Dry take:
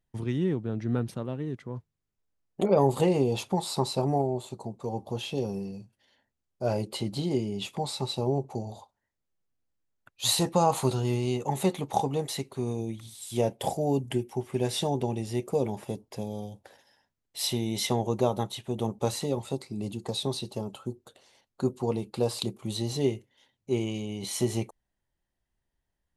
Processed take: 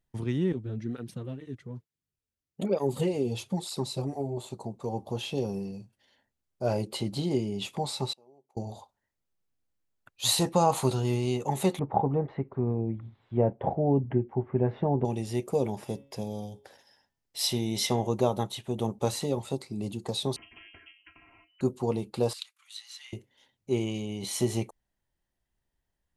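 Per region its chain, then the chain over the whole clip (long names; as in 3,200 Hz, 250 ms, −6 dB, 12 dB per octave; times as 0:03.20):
0:00.52–0:04.37: parametric band 900 Hz −8.5 dB 1.4 octaves + through-zero flanger with one copy inverted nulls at 1.1 Hz, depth 7 ms
0:08.13–0:08.57: high-pass filter 290 Hz + gate with flip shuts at −37 dBFS, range −29 dB
0:11.79–0:15.05: low-pass filter 1,700 Hz 24 dB per octave + low-shelf EQ 220 Hz +5.5 dB
0:15.75–0:18.07: parametric band 5,200 Hz +5 dB 0.28 octaves + hum removal 138.2 Hz, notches 26
0:20.36–0:21.61: stiff-string resonator 200 Hz, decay 0.22 s, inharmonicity 0.008 + voice inversion scrambler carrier 3,000 Hz + every bin compressed towards the loudest bin 4 to 1
0:22.33–0:23.13: Butterworth high-pass 1,400 Hz + spectral tilt −3 dB per octave
whole clip: no processing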